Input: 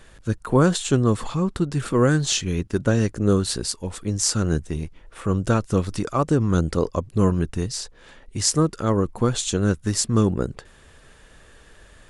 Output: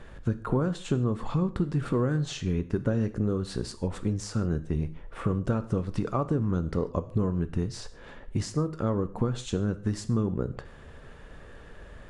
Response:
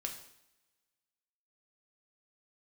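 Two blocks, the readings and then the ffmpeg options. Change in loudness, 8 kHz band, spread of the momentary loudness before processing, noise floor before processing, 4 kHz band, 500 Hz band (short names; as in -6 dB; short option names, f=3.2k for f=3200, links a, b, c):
-7.0 dB, -18.5 dB, 10 LU, -51 dBFS, -14.0 dB, -7.5 dB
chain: -filter_complex "[0:a]acompressor=threshold=-28dB:ratio=6,lowpass=f=1.2k:p=1,asplit=2[a][b];[1:a]atrim=start_sample=2205,afade=t=out:st=0.21:d=0.01,atrim=end_sample=9702[c];[b][c]afir=irnorm=-1:irlink=0,volume=-1.5dB[d];[a][d]amix=inputs=2:normalize=0"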